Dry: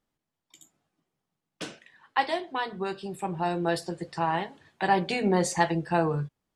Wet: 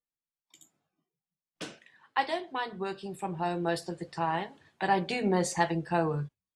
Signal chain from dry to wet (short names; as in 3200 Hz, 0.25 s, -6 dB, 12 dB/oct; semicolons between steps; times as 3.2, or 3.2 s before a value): spectral noise reduction 19 dB; gain -3 dB